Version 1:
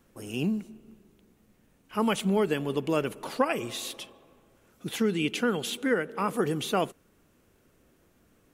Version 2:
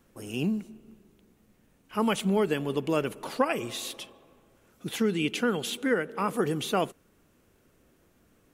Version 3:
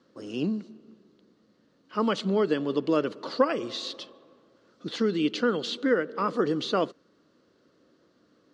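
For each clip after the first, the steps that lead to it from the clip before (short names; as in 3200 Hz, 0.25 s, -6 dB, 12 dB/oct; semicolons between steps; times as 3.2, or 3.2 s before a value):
nothing audible
speaker cabinet 170–5600 Hz, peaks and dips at 300 Hz +5 dB, 530 Hz +5 dB, 800 Hz -6 dB, 1200 Hz +4 dB, 2400 Hz -9 dB, 4400 Hz +9 dB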